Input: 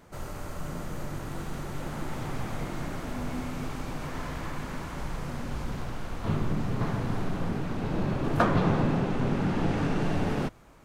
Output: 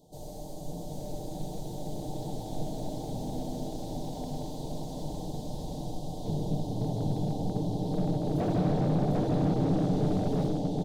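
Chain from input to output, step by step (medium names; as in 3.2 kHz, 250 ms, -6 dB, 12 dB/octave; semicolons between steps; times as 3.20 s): elliptic band-stop 800–3600 Hz, stop band 40 dB; bass shelf 110 Hz -7 dB; comb 6.6 ms, depth 43%; delay 749 ms -3 dB; on a send at -1.5 dB: reverberation RT60 2.5 s, pre-delay 35 ms; on the sum: slew-rate limiter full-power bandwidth 30 Hz; trim -2.5 dB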